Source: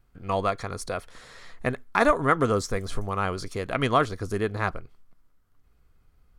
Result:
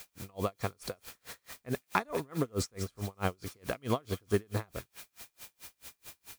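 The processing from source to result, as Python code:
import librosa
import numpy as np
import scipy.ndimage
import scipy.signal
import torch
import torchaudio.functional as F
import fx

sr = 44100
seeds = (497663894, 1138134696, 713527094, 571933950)

p1 = scipy.signal.sosfilt(scipy.signal.butter(2, 57.0, 'highpass', fs=sr, output='sos'), x)
p2 = fx.quant_dither(p1, sr, seeds[0], bits=6, dither='triangular')
p3 = p1 + (p2 * librosa.db_to_amplitude(-10.0))
p4 = fx.dynamic_eq(p3, sr, hz=1400.0, q=1.0, threshold_db=-34.0, ratio=4.0, max_db=-7)
p5 = p4 + fx.echo_wet_highpass(p4, sr, ms=171, feedback_pct=66, hz=2600.0, wet_db=-12.0, dry=0)
p6 = p5 + 10.0 ** (-58.0 / 20.0) * np.sin(2.0 * np.pi * 2400.0 * np.arange(len(p5)) / sr)
y = p6 * 10.0 ** (-38 * (0.5 - 0.5 * np.cos(2.0 * np.pi * 4.6 * np.arange(len(p6)) / sr)) / 20.0)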